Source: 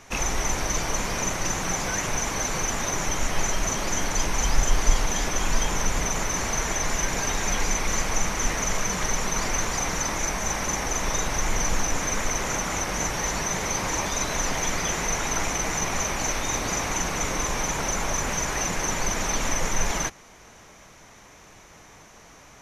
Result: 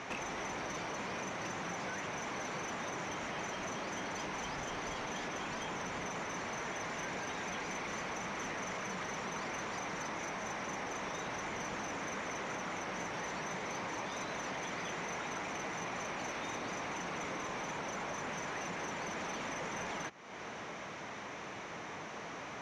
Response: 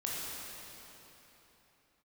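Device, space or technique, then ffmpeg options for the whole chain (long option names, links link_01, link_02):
AM radio: -af "highpass=160,lowpass=3400,acompressor=threshold=-46dB:ratio=5,asoftclip=type=tanh:threshold=-39dB,volume=7.5dB"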